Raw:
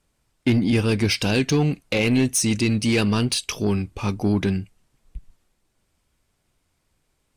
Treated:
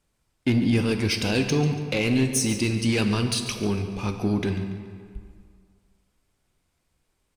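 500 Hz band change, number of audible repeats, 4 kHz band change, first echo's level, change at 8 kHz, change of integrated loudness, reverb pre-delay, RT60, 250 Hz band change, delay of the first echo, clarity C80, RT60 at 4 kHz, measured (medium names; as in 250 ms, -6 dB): -2.5 dB, 2, -2.5 dB, -14.0 dB, -3.0 dB, -2.5 dB, 8 ms, 2.1 s, -2.5 dB, 142 ms, 8.0 dB, 1.4 s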